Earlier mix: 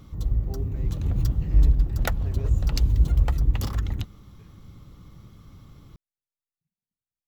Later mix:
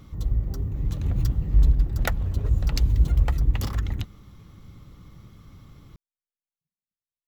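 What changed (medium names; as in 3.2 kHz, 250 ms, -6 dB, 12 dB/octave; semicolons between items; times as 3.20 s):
speech -7.5 dB; master: add peaking EQ 2 kHz +3 dB 0.73 oct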